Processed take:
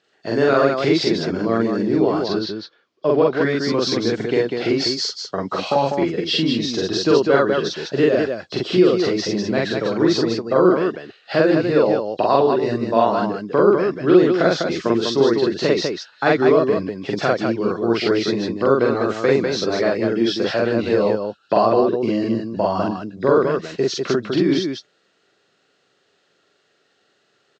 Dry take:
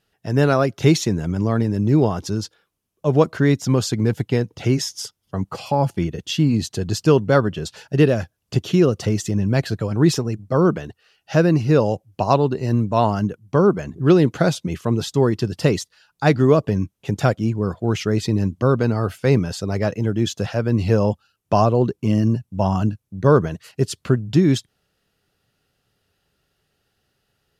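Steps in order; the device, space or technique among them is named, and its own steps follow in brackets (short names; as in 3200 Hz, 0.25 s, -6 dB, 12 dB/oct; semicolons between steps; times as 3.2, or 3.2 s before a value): 2.19–3.37 LPF 5900 Hz 12 dB/oct; hearing aid with frequency lowering (nonlinear frequency compression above 3200 Hz 1.5:1; compressor 2.5:1, threshold -21 dBFS, peak gain reduction 8.5 dB; speaker cabinet 330–6300 Hz, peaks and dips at 350 Hz +3 dB, 850 Hz -5 dB, 2800 Hz -4 dB); loudspeakers at several distances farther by 15 m 0 dB, 68 m -4 dB; gain +6.5 dB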